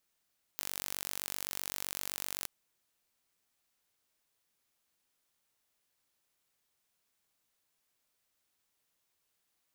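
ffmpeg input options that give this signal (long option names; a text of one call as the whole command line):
ffmpeg -f lavfi -i "aevalsrc='0.299*eq(mod(n,923),0)':duration=1.87:sample_rate=44100" out.wav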